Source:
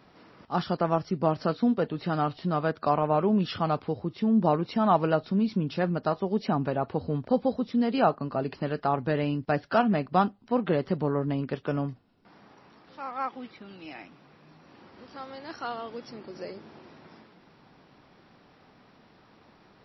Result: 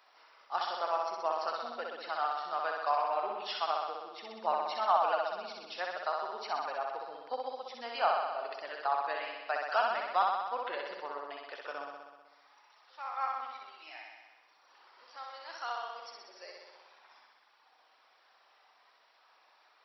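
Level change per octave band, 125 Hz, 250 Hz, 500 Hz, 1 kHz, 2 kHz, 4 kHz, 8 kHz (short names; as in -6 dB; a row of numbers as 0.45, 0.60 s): under -40 dB, -30.0 dB, -9.0 dB, -2.0 dB, -1.0 dB, 0.0 dB, n/a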